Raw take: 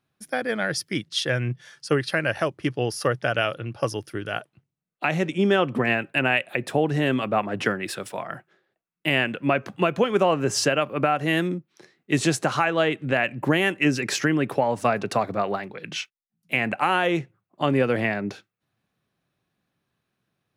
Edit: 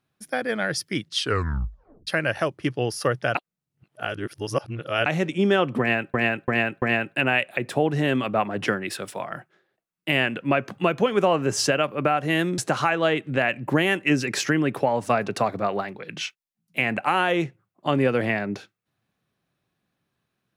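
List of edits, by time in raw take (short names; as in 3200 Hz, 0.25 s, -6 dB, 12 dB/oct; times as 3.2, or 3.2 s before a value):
1.16 tape stop 0.91 s
3.35–5.06 reverse
5.8–6.14 loop, 4 plays
11.56–12.33 cut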